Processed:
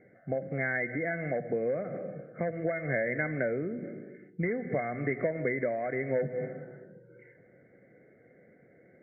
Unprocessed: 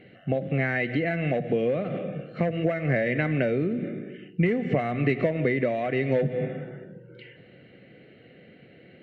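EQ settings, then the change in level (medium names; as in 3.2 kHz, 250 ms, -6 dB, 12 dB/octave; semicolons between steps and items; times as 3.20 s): dynamic bell 1.7 kHz, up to +5 dB, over -41 dBFS, Q 1.2; rippled Chebyshev low-pass 2.2 kHz, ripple 6 dB; -4.5 dB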